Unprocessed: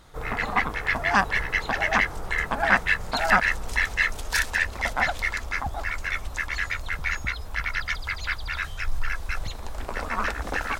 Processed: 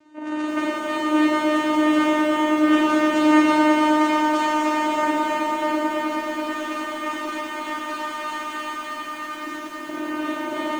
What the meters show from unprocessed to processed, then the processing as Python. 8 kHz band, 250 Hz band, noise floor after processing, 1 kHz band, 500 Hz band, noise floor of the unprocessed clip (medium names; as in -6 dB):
0.0 dB, +19.0 dB, -33 dBFS, +6.0 dB, +10.0 dB, -36 dBFS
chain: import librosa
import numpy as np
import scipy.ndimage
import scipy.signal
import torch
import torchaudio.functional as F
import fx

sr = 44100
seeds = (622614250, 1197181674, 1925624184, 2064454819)

y = fx.peak_eq(x, sr, hz=4300.0, db=-4.0, octaves=2.5)
y = fx.notch(y, sr, hz=2100.0, q=27.0)
y = fx.vocoder(y, sr, bands=4, carrier='saw', carrier_hz=305.0)
y = fx.doubler(y, sr, ms=35.0, db=-6.5)
y = fx.dynamic_eq(y, sr, hz=1800.0, q=1.3, threshold_db=-38.0, ratio=4.0, max_db=-5)
y = fx.rev_schroeder(y, sr, rt60_s=3.0, comb_ms=38, drr_db=-6.0)
y = fx.echo_crushed(y, sr, ms=323, feedback_pct=80, bits=8, wet_db=-5)